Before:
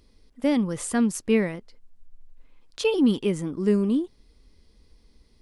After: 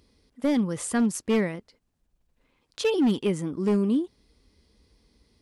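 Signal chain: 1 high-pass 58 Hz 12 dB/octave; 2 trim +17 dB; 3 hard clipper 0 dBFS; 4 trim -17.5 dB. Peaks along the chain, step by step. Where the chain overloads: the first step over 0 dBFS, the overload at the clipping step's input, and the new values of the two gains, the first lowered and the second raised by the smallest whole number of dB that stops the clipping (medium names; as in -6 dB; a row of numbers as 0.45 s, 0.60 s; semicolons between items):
-11.5 dBFS, +5.5 dBFS, 0.0 dBFS, -17.5 dBFS; step 2, 5.5 dB; step 2 +11 dB, step 4 -11.5 dB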